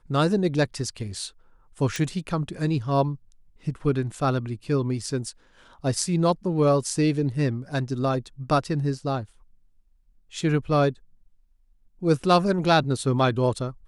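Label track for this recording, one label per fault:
1.960000	1.960000	pop

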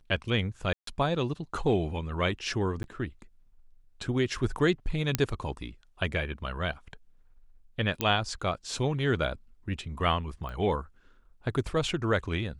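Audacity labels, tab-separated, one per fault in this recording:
0.730000	0.870000	gap 0.143 s
2.830000	2.840000	gap 11 ms
5.150000	5.150000	pop -8 dBFS
8.010000	8.010000	pop -11 dBFS
10.490000	10.490000	pop -28 dBFS

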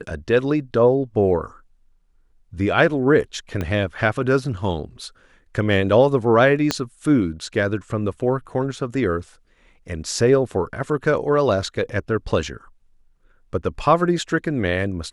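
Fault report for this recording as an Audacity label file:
3.610000	3.610000	pop -13 dBFS
6.710000	6.710000	pop -5 dBFS

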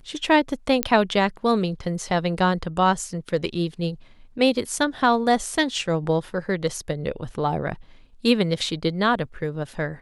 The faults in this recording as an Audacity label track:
0.830000	0.830000	pop -3 dBFS

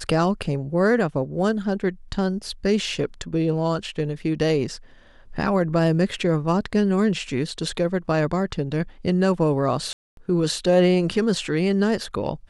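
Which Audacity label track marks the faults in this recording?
9.930000	10.170000	gap 0.242 s

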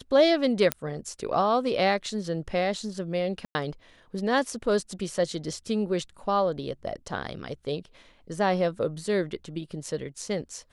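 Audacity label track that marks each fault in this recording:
0.720000	0.720000	pop -8 dBFS
3.450000	3.550000	gap 0.1 s

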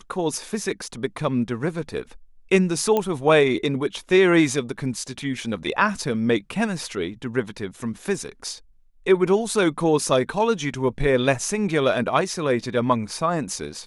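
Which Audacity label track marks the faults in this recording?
2.970000	2.970000	pop -10 dBFS

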